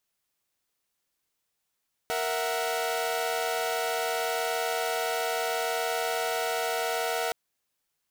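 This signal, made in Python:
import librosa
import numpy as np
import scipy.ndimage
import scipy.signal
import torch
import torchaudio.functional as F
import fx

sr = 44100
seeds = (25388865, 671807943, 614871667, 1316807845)

y = fx.chord(sr, length_s=5.22, notes=(70, 76, 78), wave='saw', level_db=-29.0)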